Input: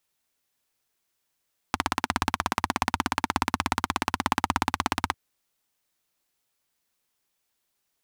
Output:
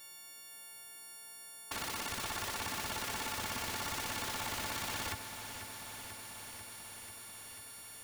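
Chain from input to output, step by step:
every partial snapped to a pitch grid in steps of 4 semitones
in parallel at −0.5 dB: brickwall limiter −16.5 dBFS, peak gain reduction 9 dB
on the sum: wrap-around overflow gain 21.5 dB
compressor whose output falls as the input rises −38 dBFS, ratio −1
low-pass filter 4,000 Hz 6 dB per octave
feedback echo at a low word length 491 ms, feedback 80%, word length 12 bits, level −10.5 dB
level +3 dB

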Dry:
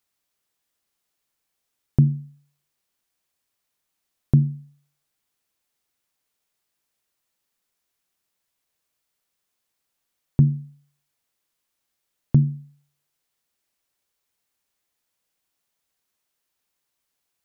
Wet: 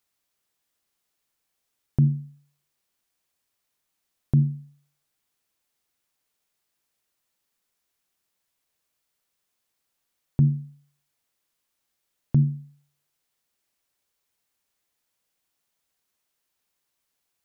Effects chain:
brickwall limiter −10.5 dBFS, peak gain reduction 5 dB

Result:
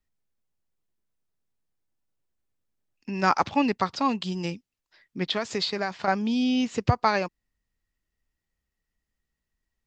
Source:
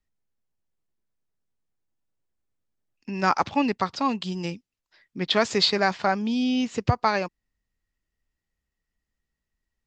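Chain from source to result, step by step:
0:05.23–0:06.08: downward compressor 5 to 1, threshold −25 dBFS, peak gain reduction 9.5 dB

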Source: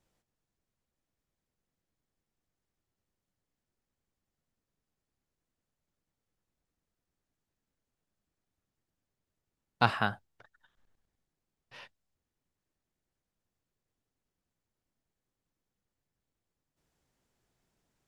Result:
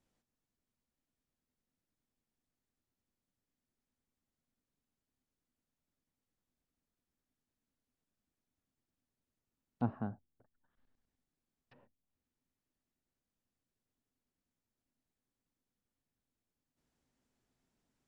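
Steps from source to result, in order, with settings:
treble cut that deepens with the level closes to 470 Hz, closed at −54 dBFS
parametric band 250 Hz +9 dB 0.36 octaves
level −5 dB

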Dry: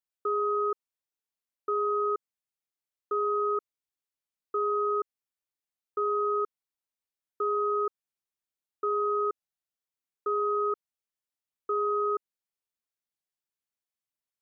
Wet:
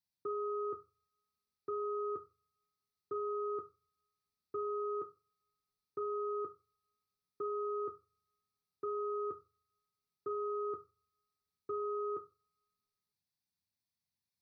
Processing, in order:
parametric band 480 Hz −11.5 dB 1.3 octaves
convolution reverb RT60 0.30 s, pre-delay 3 ms, DRR 9 dB
level −4 dB

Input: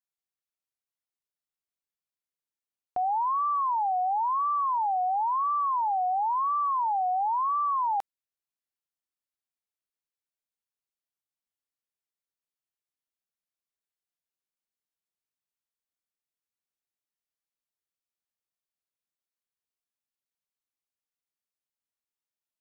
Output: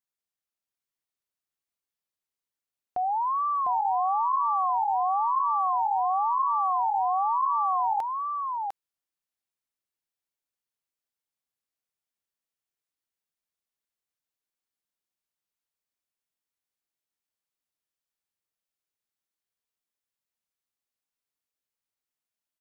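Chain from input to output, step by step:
single-tap delay 702 ms −4 dB

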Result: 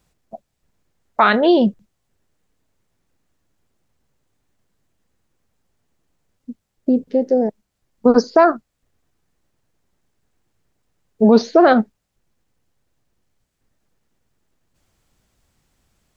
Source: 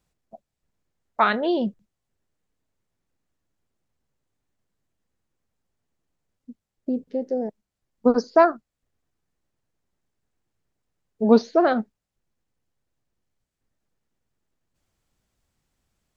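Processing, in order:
boost into a limiter +10.5 dB
level −1 dB

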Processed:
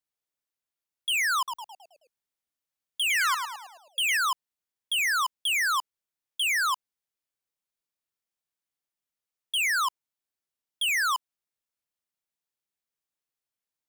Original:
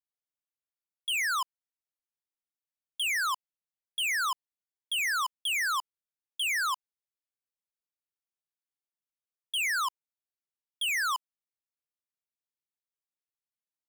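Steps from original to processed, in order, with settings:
0:01.37–0:04.17: echo with shifted repeats 107 ms, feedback 48%, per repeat −87 Hz, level −7 dB
level +3.5 dB

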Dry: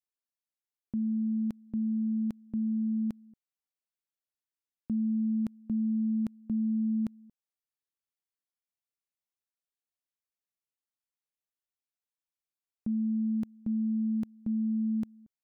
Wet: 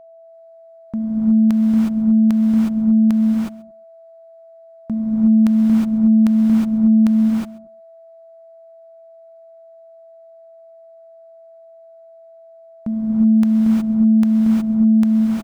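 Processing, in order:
adaptive Wiener filter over 15 samples
drawn EQ curve 440 Hz 0 dB, 690 Hz +7 dB, 990 Hz +12 dB
single-tap delay 133 ms −21.5 dB
reverb whose tail is shaped and stops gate 390 ms rising, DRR −4.5 dB
steady tone 660 Hz −50 dBFS
level +8.5 dB

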